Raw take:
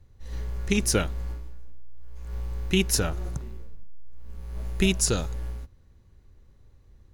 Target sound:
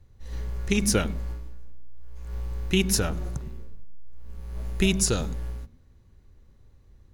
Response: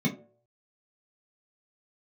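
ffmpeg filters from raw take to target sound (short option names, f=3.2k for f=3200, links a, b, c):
-filter_complex "[0:a]asplit=2[a][b];[1:a]atrim=start_sample=2205,adelay=97[c];[b][c]afir=irnorm=-1:irlink=0,volume=-30dB[d];[a][d]amix=inputs=2:normalize=0"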